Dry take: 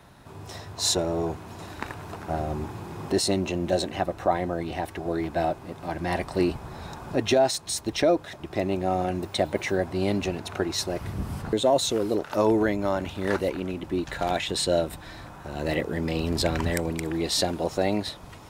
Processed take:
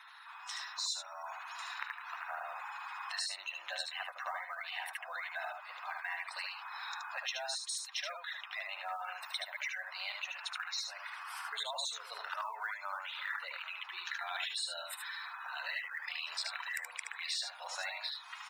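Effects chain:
inverse Chebyshev high-pass filter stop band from 250 Hz, stop band 70 dB
gate on every frequency bin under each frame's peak −15 dB strong
high-shelf EQ 4,000 Hz −3 dB
downward compressor 4 to 1, threshold −44 dBFS, peak gain reduction 17 dB
floating-point word with a short mantissa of 4 bits
single-tap delay 75 ms −4.5 dB
level +5 dB

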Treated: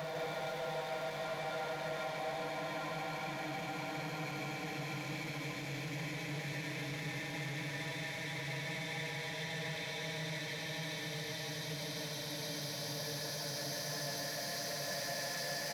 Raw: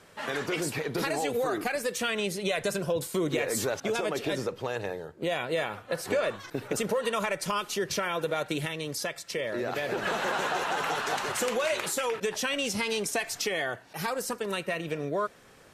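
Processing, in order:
time-frequency cells dropped at random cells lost 32%
in parallel at +0.5 dB: downward compressor, threshold −39 dBFS, peak gain reduction 15 dB
on the sum: single-tap delay 890 ms −14.5 dB
extreme stretch with random phases 22×, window 0.50 s, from 0:08.31
phaser with its sweep stopped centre 1,900 Hz, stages 8
soft clipping −37 dBFS, distortion −10 dB
low-shelf EQ 77 Hz −9.5 dB
single-tap delay 151 ms −3.5 dB
level −1 dB

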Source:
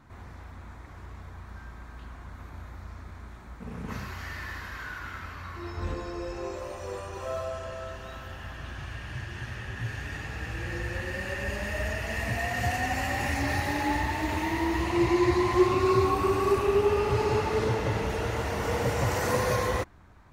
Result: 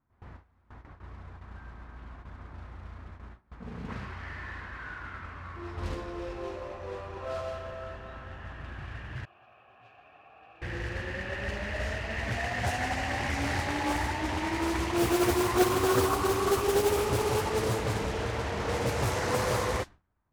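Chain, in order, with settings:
noise that follows the level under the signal 10 dB
low-pass that shuts in the quiet parts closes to 1,600 Hz, open at −20 dBFS
noise gate with hold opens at −35 dBFS
0:09.25–0:10.62: formant filter a
highs frequency-modulated by the lows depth 0.67 ms
level −2 dB

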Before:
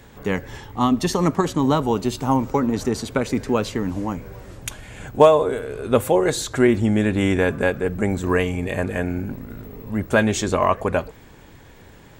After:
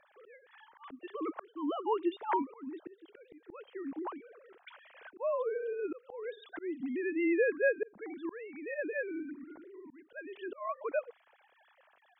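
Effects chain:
three sine waves on the formant tracks
volume swells 613 ms
level −8 dB

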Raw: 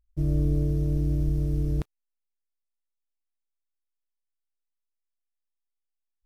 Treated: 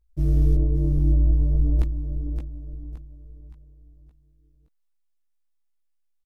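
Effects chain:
0:00.55–0:01.79: elliptic low-pass filter 1,100 Hz, stop band 40 dB
repeating echo 569 ms, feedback 40%, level −8 dB
0:03.50–0:03.76: healed spectral selection 350–750 Hz after
multi-voice chorus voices 6, 0.86 Hz, delay 17 ms, depth 2.6 ms
level +5 dB

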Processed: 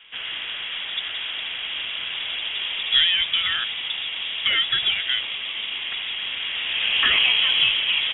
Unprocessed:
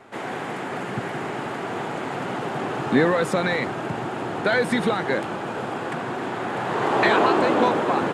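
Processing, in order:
high-frequency loss of the air 130 metres
voice inversion scrambler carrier 3,600 Hz

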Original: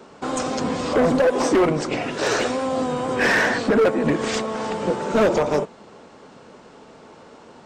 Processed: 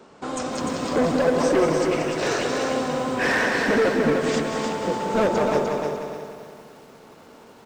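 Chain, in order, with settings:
on a send: repeating echo 183 ms, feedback 54%, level −7 dB
on the sum: feedback echo at a low word length 300 ms, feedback 35%, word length 8 bits, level −4.5 dB
level −4 dB

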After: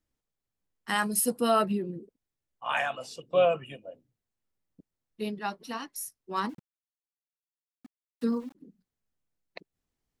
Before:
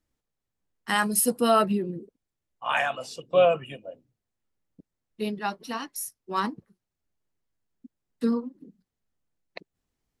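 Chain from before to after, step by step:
0:06.49–0:08.55: centre clipping without the shift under −47 dBFS
level −3.5 dB

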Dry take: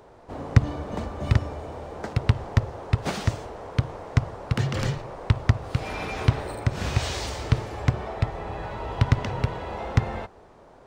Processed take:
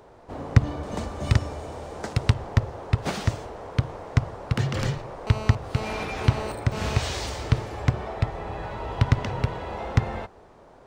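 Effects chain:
0:00.83–0:02.34: parametric band 8,400 Hz +8.5 dB 2 octaves
0:05.27–0:07.00: phone interference −35 dBFS

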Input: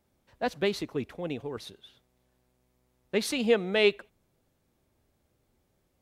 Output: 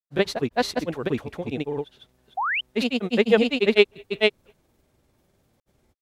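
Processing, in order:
granular cloud, spray 552 ms, pitch spread up and down by 0 semitones
sound drawn into the spectrogram rise, 0:02.37–0:02.61, 700–3,200 Hz −33 dBFS
level +8.5 dB

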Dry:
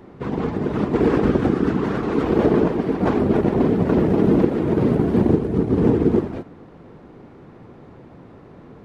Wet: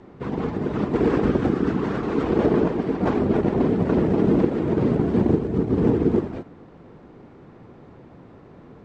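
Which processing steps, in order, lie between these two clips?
Butterworth low-pass 8,600 Hz 96 dB per octave
level −2.5 dB

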